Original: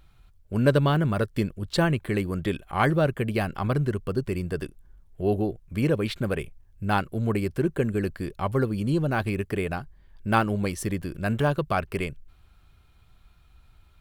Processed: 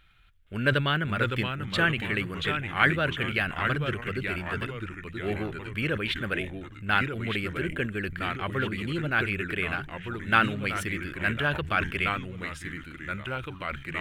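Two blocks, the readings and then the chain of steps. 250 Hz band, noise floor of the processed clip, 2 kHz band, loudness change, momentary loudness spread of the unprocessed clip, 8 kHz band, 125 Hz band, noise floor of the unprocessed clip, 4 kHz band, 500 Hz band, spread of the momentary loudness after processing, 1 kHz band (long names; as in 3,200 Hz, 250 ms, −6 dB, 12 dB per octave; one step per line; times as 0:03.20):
−5.5 dB, −45 dBFS, +7.0 dB, −2.0 dB, 9 LU, −5.0 dB, −5.0 dB, −57 dBFS, +5.5 dB, −6.0 dB, 11 LU, −0.5 dB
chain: delay with pitch and tempo change per echo 468 ms, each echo −2 semitones, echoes 3, each echo −6 dB
flat-topped bell 2,200 Hz +14 dB
level that may fall only so fast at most 110 dB per second
level −7.5 dB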